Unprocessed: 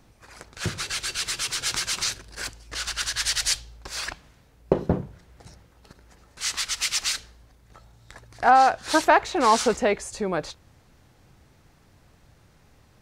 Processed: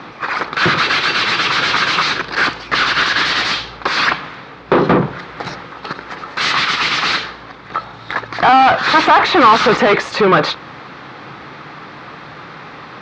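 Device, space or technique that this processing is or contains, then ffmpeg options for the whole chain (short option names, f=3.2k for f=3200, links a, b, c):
overdrive pedal into a guitar cabinet: -filter_complex "[0:a]asplit=2[a][b];[b]highpass=f=720:p=1,volume=37dB,asoftclip=type=tanh:threshold=-3dB[c];[a][c]amix=inputs=2:normalize=0,lowpass=f=4.8k:p=1,volume=-6dB,highpass=75,equalizer=f=89:t=q:w=4:g=-10,equalizer=f=150:t=q:w=4:g=5,equalizer=f=300:t=q:w=4:g=3,equalizer=f=630:t=q:w=4:g=-4,equalizer=f=1.2k:t=q:w=4:g=6,equalizer=f=2.9k:t=q:w=4:g=-4,lowpass=f=3.9k:w=0.5412,lowpass=f=3.9k:w=1.3066,asettb=1/sr,asplit=3[d][e][f];[d]atrim=end=4.754[g];[e]atrim=start=4.75:end=6.53,asetpts=PTS-STARTPTS,afade=t=in:d=0.004:c=qsin,afade=t=out:st=1.776:d=0.004:c=qsin,highshelf=f=6.6k:g=5.5[h];[f]atrim=start=6.526[i];[g][h]acrossfade=d=0.004:c1=hsin:c2=qsin[j];[j][i]acrossfade=d=0.004:c1=qsin:c2=hsin"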